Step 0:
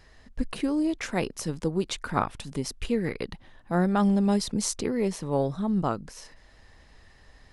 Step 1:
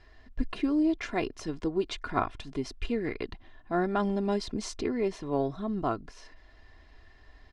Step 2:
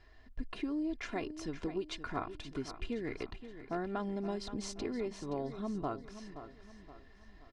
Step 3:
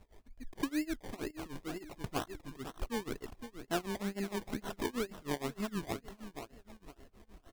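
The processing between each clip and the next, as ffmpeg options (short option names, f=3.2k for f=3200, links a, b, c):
-af "lowpass=4.2k,aecho=1:1:2.9:0.59,volume=-3dB"
-filter_complex "[0:a]acompressor=threshold=-29dB:ratio=4,asplit=2[a][b];[b]aecho=0:1:523|1046|1569|2092:0.251|0.108|0.0464|0.02[c];[a][c]amix=inputs=2:normalize=0,volume=-4.5dB"
-af "acrusher=samples=26:mix=1:aa=0.000001:lfo=1:lforange=15.6:lforate=2.1,tremolo=f=6.4:d=0.95,volume=4dB"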